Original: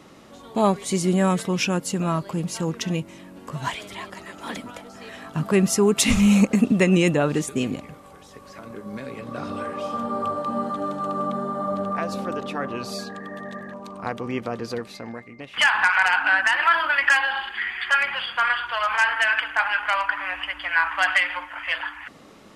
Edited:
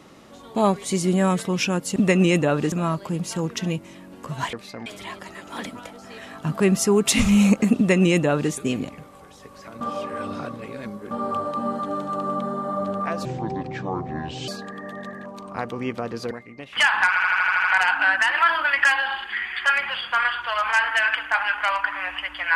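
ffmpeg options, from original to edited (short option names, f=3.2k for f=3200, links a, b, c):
-filter_complex "[0:a]asplit=17[a][b][c][d][e][f][g][h][i][j][k][l][m][n][o][p][q];[a]atrim=end=1.962[r];[b]atrim=start=6.678:end=7.442[s];[c]atrim=start=1.958:end=3.772[t];[d]atrim=start=14.788:end=15.122[u];[e]atrim=start=3.768:end=8.722[v];[f]atrim=start=8.718:end=10.022,asetpts=PTS-STARTPTS,areverse[w];[g]atrim=start=10.018:end=12.164[x];[h]atrim=start=12.16:end=12.96,asetpts=PTS-STARTPTS,asetrate=28665,aresample=44100[y];[i]atrim=start=12.956:end=14.792[z];[j]atrim=start=15.118:end=15.972[aa];[k]atrim=start=15.888:end=15.972[ab];[l]atrim=start=15.888:end=15.972[ac];[m]atrim=start=15.888:end=15.972[ad];[n]atrim=start=15.888:end=15.972[ae];[o]atrim=start=15.888:end=15.972[af];[p]atrim=start=15.888:end=15.972[ag];[q]atrim=start=15.888[ah];[r][s]acrossfade=d=0.004:c1=hsin:c2=hsin[ai];[ai][t]acrossfade=d=0.004:c1=hsin:c2=hsin[aj];[aj][u]acrossfade=d=0.004:c1=hsin:c2=hsin[ak];[ak][v]acrossfade=d=0.004:c1=hsin:c2=hsin[al];[al][w]acrossfade=d=0.004:c1=hsin:c2=hsin[am];[am][x]acrossfade=d=0.004:c1=hsin:c2=hsin[an];[an][y]acrossfade=d=0.004:c1=hsin:c2=hsin[ao];[ao][z]acrossfade=d=0.004:c1=hsin:c2=hsin[ap];[ap][aa]acrossfade=d=0.004:c1=hsin:c2=hsin[aq];[aq][ab]acrossfade=d=0.004:c1=hsin:c2=hsin[ar];[ar][ac]acrossfade=d=0.004:c1=hsin:c2=hsin[as];[as][ad]acrossfade=d=0.004:c1=hsin:c2=hsin[at];[at][ae]acrossfade=d=0.004:c1=hsin:c2=hsin[au];[au][af]acrossfade=d=0.004:c1=hsin:c2=hsin[av];[av][ag]acrossfade=d=0.004:c1=hsin:c2=hsin[aw];[aw][ah]acrossfade=d=0.004:c1=hsin:c2=hsin"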